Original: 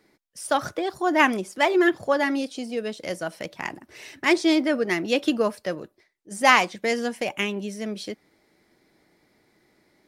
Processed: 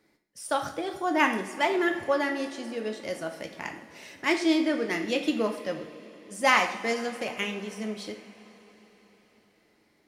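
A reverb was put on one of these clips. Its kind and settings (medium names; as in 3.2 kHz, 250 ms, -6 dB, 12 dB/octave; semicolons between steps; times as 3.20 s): two-slope reverb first 0.5 s, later 4.7 s, from -18 dB, DRR 4 dB; trim -5.5 dB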